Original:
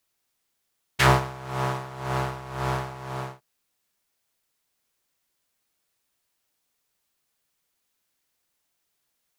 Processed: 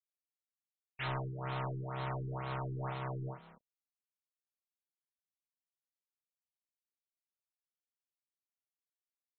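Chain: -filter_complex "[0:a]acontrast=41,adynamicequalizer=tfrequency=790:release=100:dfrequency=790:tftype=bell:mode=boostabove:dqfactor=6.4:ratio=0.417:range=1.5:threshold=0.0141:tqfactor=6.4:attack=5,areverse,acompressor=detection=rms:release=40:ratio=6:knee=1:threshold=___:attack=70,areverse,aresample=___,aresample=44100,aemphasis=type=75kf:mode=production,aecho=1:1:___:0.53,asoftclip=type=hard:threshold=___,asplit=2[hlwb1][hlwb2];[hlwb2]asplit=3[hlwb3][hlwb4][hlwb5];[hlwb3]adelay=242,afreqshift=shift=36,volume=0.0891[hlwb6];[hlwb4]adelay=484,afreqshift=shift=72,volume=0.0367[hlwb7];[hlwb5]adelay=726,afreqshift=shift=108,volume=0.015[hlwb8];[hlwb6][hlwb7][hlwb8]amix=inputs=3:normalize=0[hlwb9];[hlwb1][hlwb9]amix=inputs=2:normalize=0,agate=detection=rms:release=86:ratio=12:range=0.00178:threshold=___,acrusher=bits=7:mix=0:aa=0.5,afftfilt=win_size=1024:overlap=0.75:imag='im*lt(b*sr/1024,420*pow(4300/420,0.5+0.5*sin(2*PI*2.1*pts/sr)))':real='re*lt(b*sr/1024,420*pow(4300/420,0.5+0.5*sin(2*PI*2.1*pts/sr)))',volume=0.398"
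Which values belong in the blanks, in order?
0.0282, 32000, 6.5, 0.0562, 0.00282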